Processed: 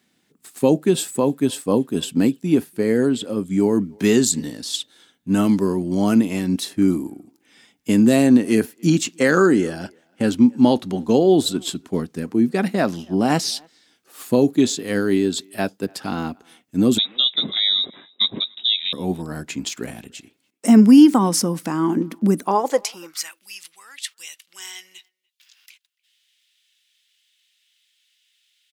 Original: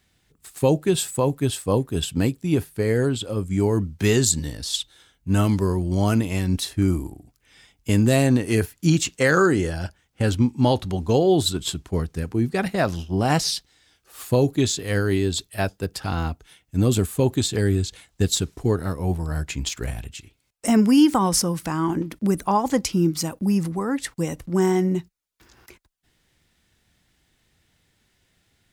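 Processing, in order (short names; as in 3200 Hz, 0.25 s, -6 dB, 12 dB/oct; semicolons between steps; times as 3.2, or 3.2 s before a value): 16.98–18.93 inverted band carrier 3800 Hz; high-pass sweep 230 Hz -> 3000 Hz, 22.4–23.45; speakerphone echo 0.29 s, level -28 dB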